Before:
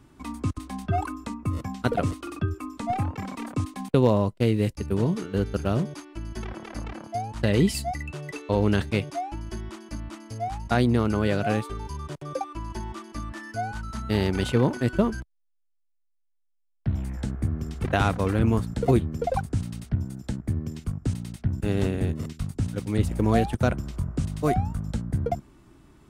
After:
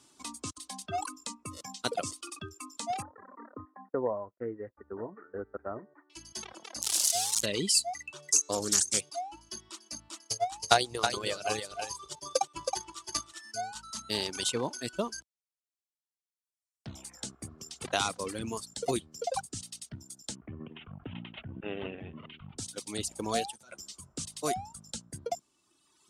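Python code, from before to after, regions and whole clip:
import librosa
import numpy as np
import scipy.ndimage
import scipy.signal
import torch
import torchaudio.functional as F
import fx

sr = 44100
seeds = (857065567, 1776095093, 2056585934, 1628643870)

y = fx.chain(x, sr, fx.cheby_ripple(hz=1900.0, ripple_db=3),
    fx.peak_eq(hz=160.0, db=-13.0, octaves=0.41), at=(3.02, 6.1))
y = fx.chain(y, sr, fx.crossing_spikes(level_db=-16.5),
    fx.high_shelf(hz=9700.0, db=-3.5), at=(6.82, 7.46))
y = fx.chain(y, sr, fx.highpass(hz=41.0, slope=12),
    fx.high_shelf_res(hz=4800.0, db=12.5, q=3.0),
    fx.doppler_dist(depth_ms=0.42), at=(8.31, 9.01))
y = fx.chain(y, sr, fx.peak_eq(hz=240.0, db=-13.0, octaves=0.36),
    fx.transient(attack_db=10, sustain_db=-4),
    fx.echo_single(ms=321, db=-4.5), at=(10.19, 13.45))
y = fx.chain(y, sr, fx.steep_lowpass(hz=3100.0, slope=72),
    fx.sustainer(db_per_s=27.0), at=(20.35, 22.58))
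y = fx.chain(y, sr, fx.low_shelf(hz=170.0, db=-6.0),
    fx.over_compress(threshold_db=-31.0, ratio=-1.0),
    fx.ensemble(), at=(23.52, 24.13))
y = fx.weighting(y, sr, curve='ITU-R 468')
y = fx.dereverb_blind(y, sr, rt60_s=1.9)
y = fx.peak_eq(y, sr, hz=1900.0, db=-12.0, octaves=1.5)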